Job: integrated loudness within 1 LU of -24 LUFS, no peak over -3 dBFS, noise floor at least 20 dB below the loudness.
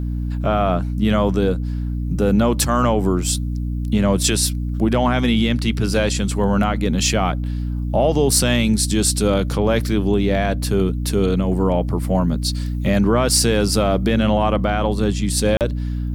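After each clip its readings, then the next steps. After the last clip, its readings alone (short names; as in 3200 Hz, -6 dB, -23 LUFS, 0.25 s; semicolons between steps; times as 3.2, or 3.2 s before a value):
dropouts 1; longest dropout 38 ms; hum 60 Hz; harmonics up to 300 Hz; hum level -20 dBFS; loudness -19.0 LUFS; peak -4.5 dBFS; loudness target -24.0 LUFS
-> interpolate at 15.57, 38 ms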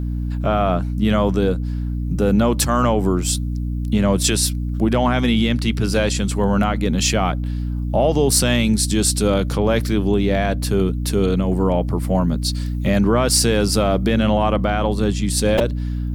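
dropouts 0; hum 60 Hz; harmonics up to 300 Hz; hum level -20 dBFS
-> de-hum 60 Hz, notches 5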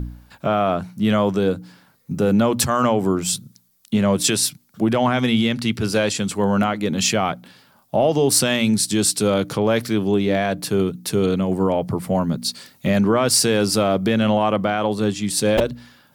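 hum none; loudness -19.5 LUFS; peak -6.0 dBFS; loudness target -24.0 LUFS
-> gain -4.5 dB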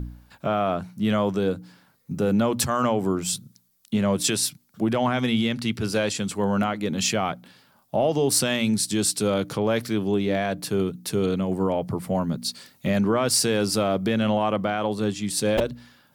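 loudness -24.0 LUFS; peak -10.5 dBFS; noise floor -62 dBFS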